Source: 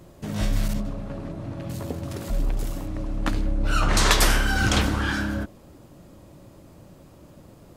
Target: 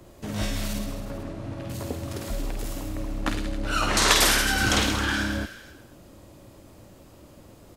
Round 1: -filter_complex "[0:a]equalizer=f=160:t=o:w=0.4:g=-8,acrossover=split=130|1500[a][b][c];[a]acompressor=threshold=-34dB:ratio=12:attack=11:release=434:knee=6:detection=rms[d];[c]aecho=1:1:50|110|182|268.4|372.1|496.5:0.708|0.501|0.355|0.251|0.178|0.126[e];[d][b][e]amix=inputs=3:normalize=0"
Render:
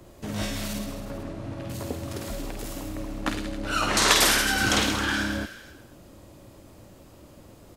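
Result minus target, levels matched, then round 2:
compressor: peak gain reduction +7 dB
-filter_complex "[0:a]equalizer=f=160:t=o:w=0.4:g=-8,acrossover=split=130|1500[a][b][c];[a]acompressor=threshold=-26.5dB:ratio=12:attack=11:release=434:knee=6:detection=rms[d];[c]aecho=1:1:50|110|182|268.4|372.1|496.5:0.708|0.501|0.355|0.251|0.178|0.126[e];[d][b][e]amix=inputs=3:normalize=0"

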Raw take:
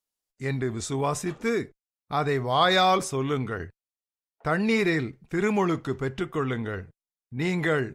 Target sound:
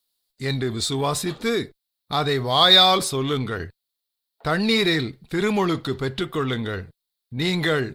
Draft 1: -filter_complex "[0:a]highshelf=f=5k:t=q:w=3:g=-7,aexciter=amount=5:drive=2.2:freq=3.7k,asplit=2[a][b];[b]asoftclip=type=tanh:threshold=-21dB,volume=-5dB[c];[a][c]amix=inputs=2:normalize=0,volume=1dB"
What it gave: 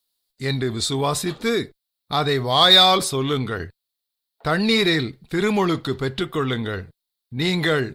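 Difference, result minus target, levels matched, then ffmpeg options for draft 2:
soft clip: distortion -5 dB
-filter_complex "[0:a]highshelf=f=5k:t=q:w=3:g=-7,aexciter=amount=5:drive=2.2:freq=3.7k,asplit=2[a][b];[b]asoftclip=type=tanh:threshold=-31dB,volume=-5dB[c];[a][c]amix=inputs=2:normalize=0,volume=1dB"

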